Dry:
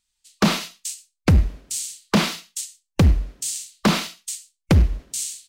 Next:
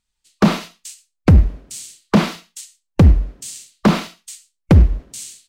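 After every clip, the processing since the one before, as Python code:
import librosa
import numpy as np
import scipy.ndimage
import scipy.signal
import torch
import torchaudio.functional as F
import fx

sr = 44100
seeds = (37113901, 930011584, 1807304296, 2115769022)

y = fx.high_shelf(x, sr, hz=2000.0, db=-11.5)
y = y * librosa.db_to_amplitude(5.5)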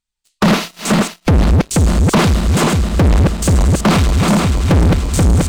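y = fx.reverse_delay_fb(x, sr, ms=241, feedback_pct=79, wet_db=-5)
y = 10.0 ** (-7.5 / 20.0) * (np.abs((y / 10.0 ** (-7.5 / 20.0) + 3.0) % 4.0 - 2.0) - 1.0)
y = fx.leveller(y, sr, passes=3)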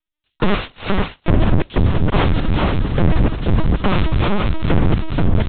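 y = fx.lpc_vocoder(x, sr, seeds[0], excitation='pitch_kept', order=10)
y = y * librosa.db_to_amplitude(-2.5)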